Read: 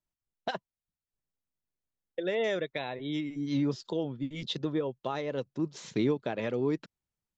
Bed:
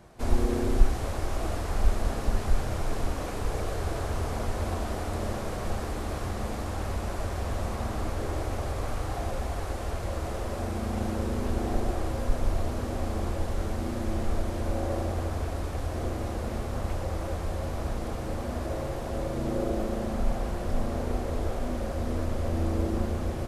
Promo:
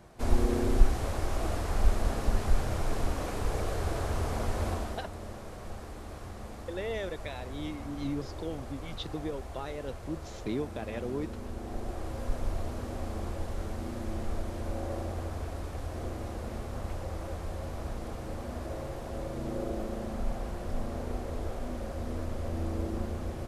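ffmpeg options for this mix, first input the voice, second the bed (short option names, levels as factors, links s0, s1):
-filter_complex "[0:a]adelay=4500,volume=0.531[s0];[1:a]volume=1.58,afade=t=out:st=4.68:d=0.39:silence=0.334965,afade=t=in:st=11.62:d=0.67:silence=0.562341[s1];[s0][s1]amix=inputs=2:normalize=0"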